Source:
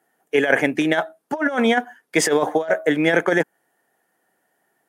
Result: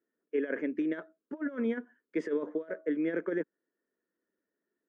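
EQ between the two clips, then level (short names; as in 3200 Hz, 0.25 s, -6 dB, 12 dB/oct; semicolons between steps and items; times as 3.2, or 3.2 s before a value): tape spacing loss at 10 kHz 43 dB; bell 3400 Hz -7 dB 1.4 oct; fixed phaser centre 320 Hz, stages 4; -8.5 dB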